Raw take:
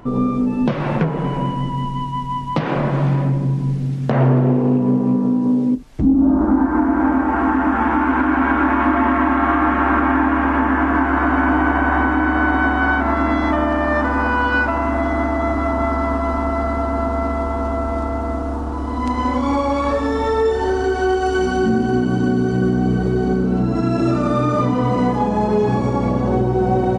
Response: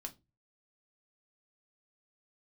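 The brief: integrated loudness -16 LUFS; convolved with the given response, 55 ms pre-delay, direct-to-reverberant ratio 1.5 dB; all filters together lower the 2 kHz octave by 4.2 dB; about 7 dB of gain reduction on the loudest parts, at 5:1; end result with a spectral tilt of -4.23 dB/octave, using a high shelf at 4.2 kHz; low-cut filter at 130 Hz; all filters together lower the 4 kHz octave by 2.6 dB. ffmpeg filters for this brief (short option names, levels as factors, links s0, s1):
-filter_complex "[0:a]highpass=130,equalizer=f=2000:t=o:g=-7,equalizer=f=4000:t=o:g=-5,highshelf=f=4200:g=8,acompressor=threshold=0.112:ratio=5,asplit=2[s0][s1];[1:a]atrim=start_sample=2205,adelay=55[s2];[s1][s2]afir=irnorm=-1:irlink=0,volume=1.26[s3];[s0][s3]amix=inputs=2:normalize=0,volume=1.58"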